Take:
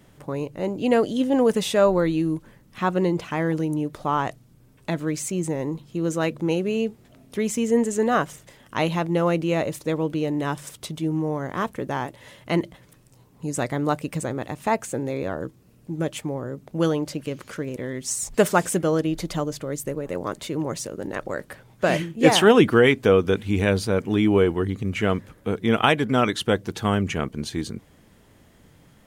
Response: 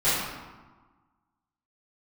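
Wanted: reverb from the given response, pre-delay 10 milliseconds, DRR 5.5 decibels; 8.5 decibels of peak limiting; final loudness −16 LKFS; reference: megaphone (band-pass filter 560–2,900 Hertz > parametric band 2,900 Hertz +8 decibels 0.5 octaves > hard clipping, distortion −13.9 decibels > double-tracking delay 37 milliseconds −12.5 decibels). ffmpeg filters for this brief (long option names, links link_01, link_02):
-filter_complex "[0:a]alimiter=limit=-12dB:level=0:latency=1,asplit=2[link_01][link_02];[1:a]atrim=start_sample=2205,adelay=10[link_03];[link_02][link_03]afir=irnorm=-1:irlink=0,volume=-21dB[link_04];[link_01][link_04]amix=inputs=2:normalize=0,highpass=560,lowpass=2900,equalizer=frequency=2900:width_type=o:width=0.5:gain=8,asoftclip=type=hard:threshold=-19.5dB,asplit=2[link_05][link_06];[link_06]adelay=37,volume=-12.5dB[link_07];[link_05][link_07]amix=inputs=2:normalize=0,volume=13.5dB"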